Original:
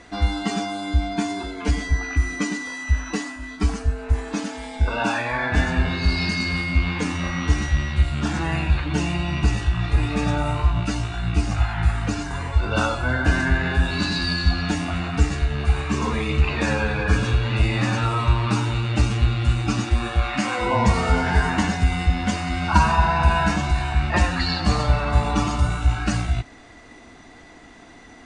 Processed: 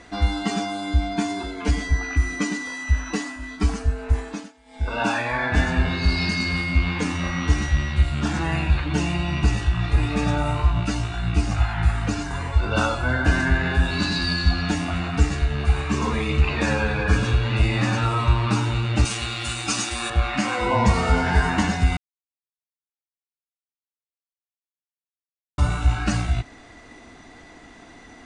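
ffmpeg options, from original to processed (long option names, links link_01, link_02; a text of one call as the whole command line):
ffmpeg -i in.wav -filter_complex "[0:a]asettb=1/sr,asplit=3[link_01][link_02][link_03];[link_01]atrim=end=19.054[link_04];[link_02]atrim=start=19.05:end=20.1,asetpts=PTS-STARTPTS,afade=type=in:duration=0.004:curve=qsin,afade=type=out:start_time=1.046:duration=0.004:curve=qsin,aemphasis=mode=production:type=riaa[link_05];[link_03]atrim=start=20.096[link_06];[link_04][link_05]acrossfade=duration=0.004:curve1=hsin:curve2=qsin[link_07];[link_07][link_06]acrossfade=duration=0.004:curve1=qsin:curve2=hsin,asplit=5[link_08][link_09][link_10][link_11][link_12];[link_08]atrim=end=4.53,asetpts=PTS-STARTPTS,afade=type=out:start_time=4.16:duration=0.37:silence=0.0794328[link_13];[link_09]atrim=start=4.53:end=4.65,asetpts=PTS-STARTPTS,volume=-22dB[link_14];[link_10]atrim=start=4.65:end=21.97,asetpts=PTS-STARTPTS,afade=type=in:duration=0.37:silence=0.0794328,afade=type=out:start_time=17.316:duration=0.004:curve=hsin[link_15];[link_11]atrim=start=21.97:end=25.58,asetpts=PTS-STARTPTS,volume=0[link_16];[link_12]atrim=start=25.58,asetpts=PTS-STARTPTS,afade=type=in:duration=0.004:curve=hsin[link_17];[link_13][link_14][link_15][link_16][link_17]concat=n=5:v=0:a=1" out.wav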